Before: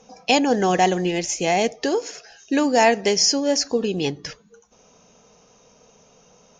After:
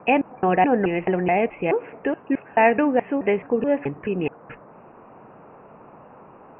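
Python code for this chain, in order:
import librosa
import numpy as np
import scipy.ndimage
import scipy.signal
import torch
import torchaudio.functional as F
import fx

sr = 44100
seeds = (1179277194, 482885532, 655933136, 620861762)

y = fx.block_reorder(x, sr, ms=214.0, group=2)
y = fx.dmg_noise_band(y, sr, seeds[0], low_hz=110.0, high_hz=1100.0, level_db=-47.0)
y = scipy.signal.sosfilt(scipy.signal.butter(16, 2700.0, 'lowpass', fs=sr, output='sos'), y)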